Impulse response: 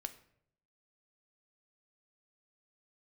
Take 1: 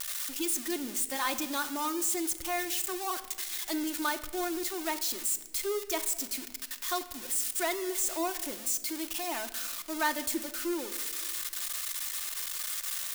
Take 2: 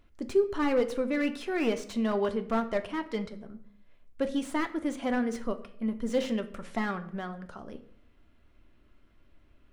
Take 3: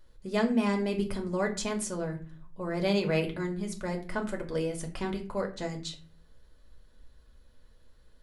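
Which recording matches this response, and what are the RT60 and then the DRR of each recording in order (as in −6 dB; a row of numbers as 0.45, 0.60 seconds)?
2; non-exponential decay, 0.70 s, 0.40 s; 6.0, 7.5, 1.5 decibels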